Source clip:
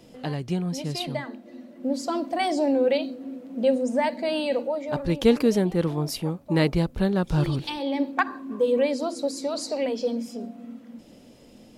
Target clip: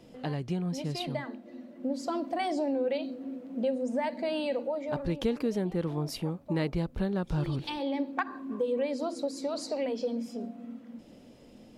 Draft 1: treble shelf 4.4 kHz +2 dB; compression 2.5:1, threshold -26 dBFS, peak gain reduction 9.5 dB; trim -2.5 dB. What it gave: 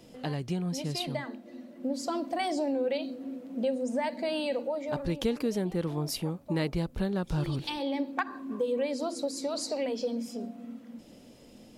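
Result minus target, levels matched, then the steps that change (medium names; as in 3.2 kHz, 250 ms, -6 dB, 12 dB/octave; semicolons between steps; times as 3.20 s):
8 kHz band +6.0 dB
change: treble shelf 4.4 kHz -6.5 dB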